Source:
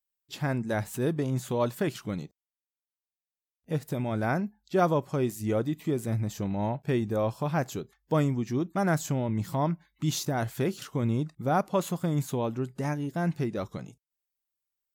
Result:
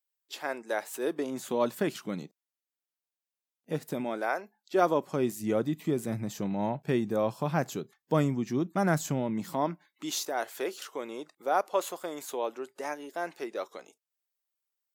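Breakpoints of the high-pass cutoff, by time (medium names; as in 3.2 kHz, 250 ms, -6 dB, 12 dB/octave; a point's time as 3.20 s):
high-pass 24 dB/octave
0.93 s 380 Hz
1.65 s 180 Hz
3.98 s 180 Hz
4.32 s 460 Hz
5.31 s 140 Hz
9.17 s 140 Hz
10.30 s 390 Hz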